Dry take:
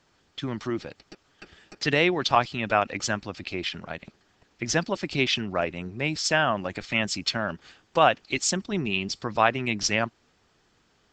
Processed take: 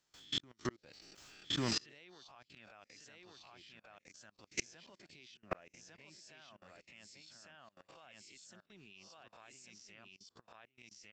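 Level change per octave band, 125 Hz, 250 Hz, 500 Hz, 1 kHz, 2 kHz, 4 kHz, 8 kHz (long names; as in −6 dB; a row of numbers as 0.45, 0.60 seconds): −18.5, −18.5, −24.0, −27.0, −23.5, −14.0, −16.5 decibels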